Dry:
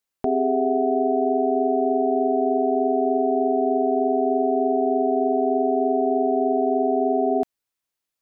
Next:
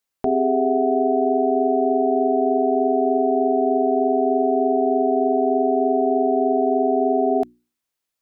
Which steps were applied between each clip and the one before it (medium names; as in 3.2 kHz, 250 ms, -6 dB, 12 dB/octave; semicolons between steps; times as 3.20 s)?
hum notches 60/120/180/240/300/360 Hz; trim +2 dB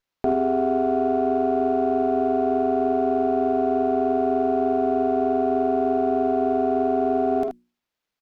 early reflections 49 ms -7.5 dB, 78 ms -8 dB; sliding maximum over 5 samples; trim -1 dB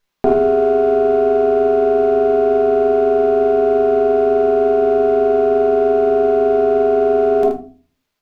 simulated room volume 220 m³, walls furnished, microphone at 1.3 m; trim +7 dB